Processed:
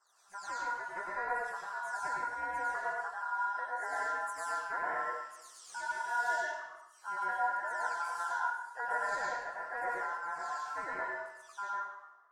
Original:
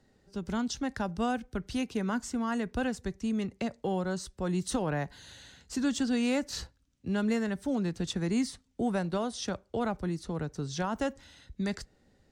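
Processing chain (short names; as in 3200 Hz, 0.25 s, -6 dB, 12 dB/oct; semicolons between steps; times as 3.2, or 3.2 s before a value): spectral delay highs early, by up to 0.403 s; EQ curve 690 Hz 0 dB, 1600 Hz -23 dB, 5800 Hz -5 dB; ring modulator 1200 Hz; plate-style reverb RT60 0.83 s, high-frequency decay 0.95×, pre-delay 85 ms, DRR -3.5 dB; gain -5 dB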